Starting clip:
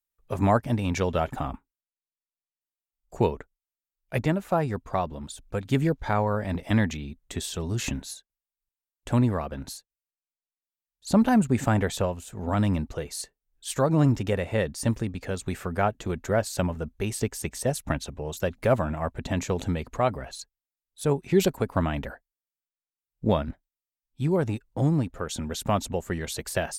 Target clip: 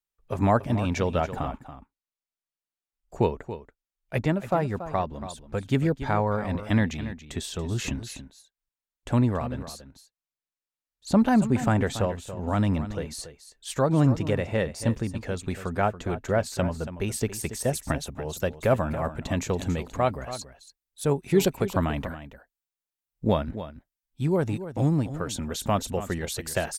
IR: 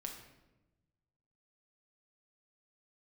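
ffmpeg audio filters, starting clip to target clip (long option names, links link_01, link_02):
-af "asetnsamples=nb_out_samples=441:pad=0,asendcmd='17.08 highshelf g 2.5',highshelf=frequency=8900:gain=-7.5,aecho=1:1:281:0.237"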